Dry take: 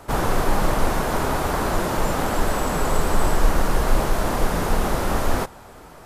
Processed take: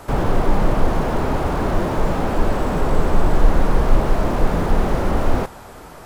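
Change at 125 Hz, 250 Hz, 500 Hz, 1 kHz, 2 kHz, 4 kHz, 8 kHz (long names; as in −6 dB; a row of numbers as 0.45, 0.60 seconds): +4.5, +4.0, +2.5, 0.0, −2.0, −4.0, −9.0 decibels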